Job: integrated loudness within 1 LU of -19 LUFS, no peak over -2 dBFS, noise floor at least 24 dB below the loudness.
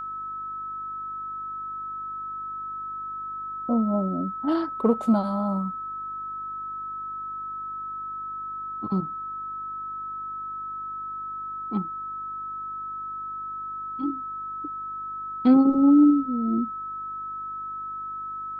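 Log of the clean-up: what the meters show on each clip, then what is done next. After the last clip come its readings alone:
hum 50 Hz; harmonics up to 350 Hz; hum level -56 dBFS; steady tone 1300 Hz; tone level -31 dBFS; loudness -27.5 LUFS; peak -8.0 dBFS; loudness target -19.0 LUFS
-> de-hum 50 Hz, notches 7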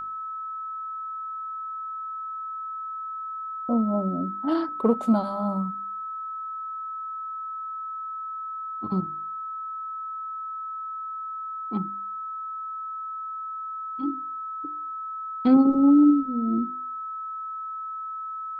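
hum none; steady tone 1300 Hz; tone level -31 dBFS
-> notch 1300 Hz, Q 30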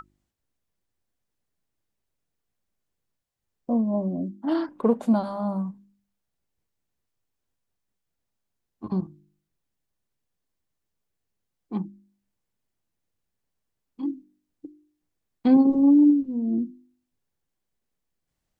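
steady tone none; loudness -23.5 LUFS; peak -8.5 dBFS; loudness target -19.0 LUFS
-> gain +4.5 dB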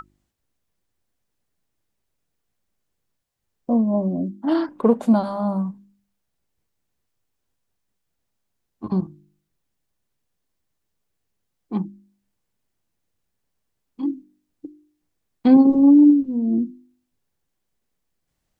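loudness -19.0 LUFS; peak -4.0 dBFS; noise floor -77 dBFS

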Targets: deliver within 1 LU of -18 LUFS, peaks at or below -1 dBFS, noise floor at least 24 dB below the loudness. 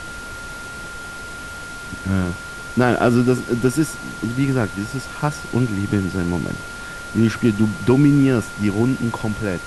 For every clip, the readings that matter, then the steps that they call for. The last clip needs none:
steady tone 1400 Hz; tone level -32 dBFS; noise floor -33 dBFS; noise floor target -44 dBFS; loudness -20.0 LUFS; peak -3.5 dBFS; loudness target -18.0 LUFS
-> notch 1400 Hz, Q 30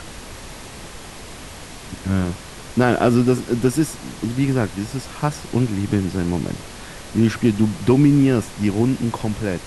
steady tone none; noise floor -37 dBFS; noise floor target -44 dBFS
-> noise print and reduce 7 dB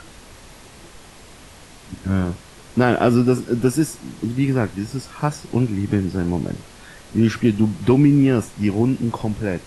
noise floor -44 dBFS; loudness -20.0 LUFS; peak -3.5 dBFS; loudness target -18.0 LUFS
-> gain +2 dB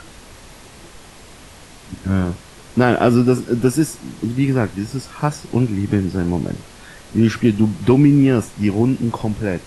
loudness -18.0 LUFS; peak -1.5 dBFS; noise floor -42 dBFS

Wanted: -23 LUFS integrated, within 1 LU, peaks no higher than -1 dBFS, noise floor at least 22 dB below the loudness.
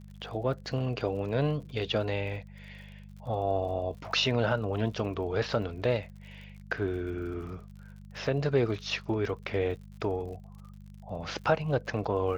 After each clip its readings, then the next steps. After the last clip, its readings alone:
ticks 54/s; hum 50 Hz; harmonics up to 200 Hz; hum level -45 dBFS; loudness -31.5 LUFS; peak -13.0 dBFS; loudness target -23.0 LUFS
-> de-click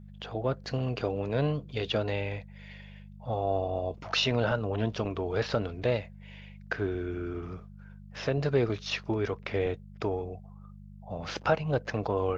ticks 0.081/s; hum 50 Hz; harmonics up to 200 Hz; hum level -45 dBFS
-> de-hum 50 Hz, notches 4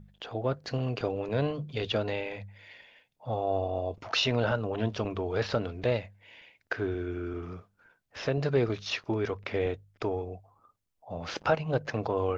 hum none; loudness -31.5 LUFS; peak -13.5 dBFS; loudness target -23.0 LUFS
-> gain +8.5 dB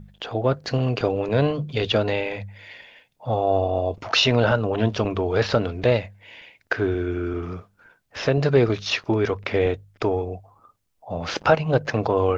loudness -23.0 LUFS; peak -5.0 dBFS; noise floor -67 dBFS

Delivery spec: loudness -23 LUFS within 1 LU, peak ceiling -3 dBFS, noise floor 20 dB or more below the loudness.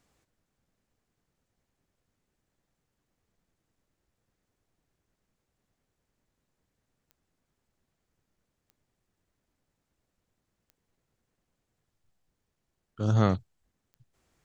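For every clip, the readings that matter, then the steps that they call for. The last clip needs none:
clicks 4; loudness -27.5 LUFS; peak -9.0 dBFS; loudness target -23.0 LUFS
-> de-click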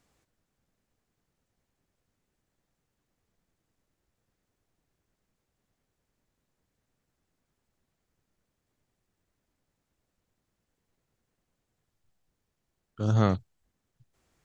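clicks 0; loudness -27.5 LUFS; peak -9.0 dBFS; loudness target -23.0 LUFS
-> gain +4.5 dB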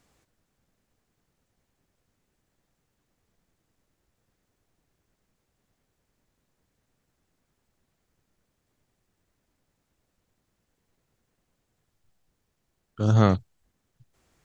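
loudness -23.0 LUFS; peak -4.5 dBFS; noise floor -78 dBFS

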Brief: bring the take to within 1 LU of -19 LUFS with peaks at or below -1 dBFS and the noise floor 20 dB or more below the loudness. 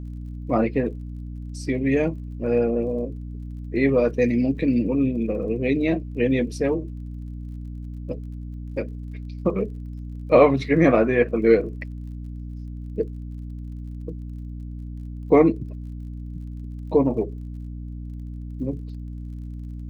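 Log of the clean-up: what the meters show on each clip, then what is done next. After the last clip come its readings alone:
ticks 35/s; hum 60 Hz; harmonics up to 300 Hz; hum level -31 dBFS; loudness -22.5 LUFS; peak -3.0 dBFS; loudness target -19.0 LUFS
-> de-click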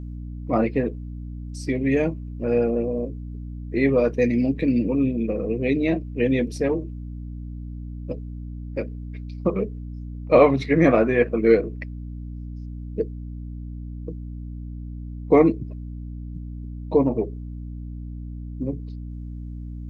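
ticks 0.10/s; hum 60 Hz; harmonics up to 300 Hz; hum level -31 dBFS
-> de-hum 60 Hz, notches 5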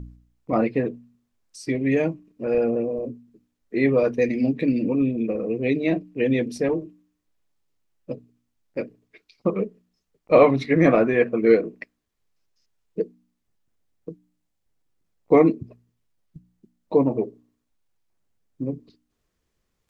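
hum none; loudness -22.5 LUFS; peak -3.0 dBFS; loudness target -19.0 LUFS
-> gain +3.5 dB; limiter -1 dBFS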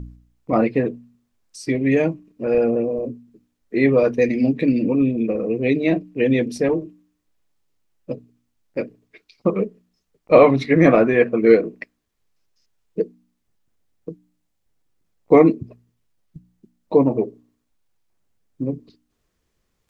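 loudness -19.0 LUFS; peak -1.0 dBFS; noise floor -73 dBFS

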